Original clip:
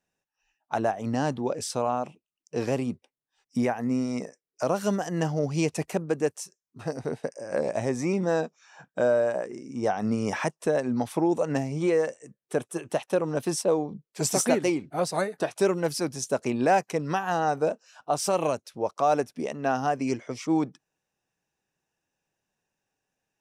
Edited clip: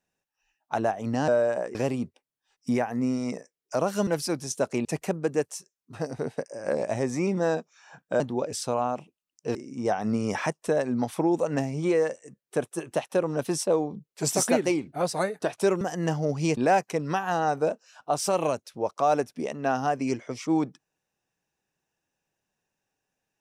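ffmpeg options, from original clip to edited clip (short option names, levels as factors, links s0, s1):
-filter_complex "[0:a]asplit=9[s0][s1][s2][s3][s4][s5][s6][s7][s8];[s0]atrim=end=1.282[s9];[s1]atrim=start=9.058:end=9.532[s10];[s2]atrim=start=2.628:end=4.952[s11];[s3]atrim=start=15.788:end=16.572[s12];[s4]atrim=start=5.708:end=9.062[s13];[s5]atrim=start=1.278:end=2.632[s14];[s6]atrim=start=9.528:end=15.792[s15];[s7]atrim=start=4.948:end=5.712[s16];[s8]atrim=start=16.568[s17];[s9][s10]acrossfade=d=0.004:c1=hsin:c2=hsin[s18];[s18][s11]acrossfade=d=0.004:c1=hsin:c2=hsin[s19];[s19][s12]acrossfade=d=0.004:c1=hsin:c2=hsin[s20];[s20][s13]acrossfade=d=0.004:c1=hsin:c2=hsin[s21];[s21][s14]acrossfade=d=0.004:c1=hsin:c2=hsin[s22];[s22][s15]acrossfade=d=0.004:c1=hsin:c2=hsin[s23];[s23][s16]acrossfade=d=0.004:c1=hsin:c2=hsin[s24];[s24][s17]acrossfade=d=0.004:c1=hsin:c2=hsin"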